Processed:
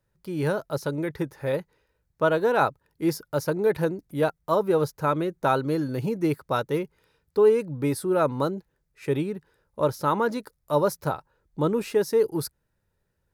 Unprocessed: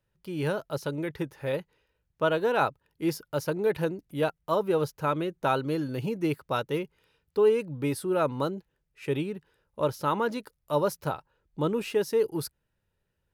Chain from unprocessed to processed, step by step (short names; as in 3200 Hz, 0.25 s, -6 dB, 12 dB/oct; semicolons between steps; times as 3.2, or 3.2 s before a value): bell 2900 Hz -8 dB 0.52 oct; gain +3.5 dB